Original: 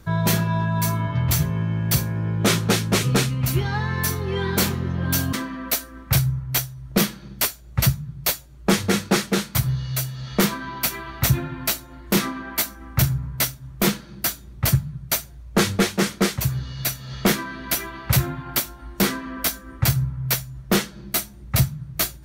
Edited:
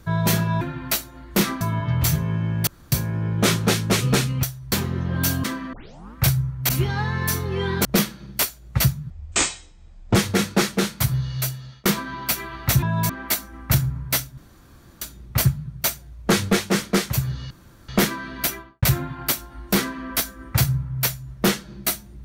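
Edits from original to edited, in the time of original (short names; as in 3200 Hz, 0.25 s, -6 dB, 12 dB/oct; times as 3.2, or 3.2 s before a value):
0.61–0.88 swap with 11.37–12.37
1.94 insert room tone 0.25 s
3.45–4.61 swap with 6.58–6.87
5.62 tape start 0.43 s
8.12–8.7 speed 55%
10.01–10.4 fade out
13.65–14.29 room tone
16.78–17.16 room tone
17.72–18.1 studio fade out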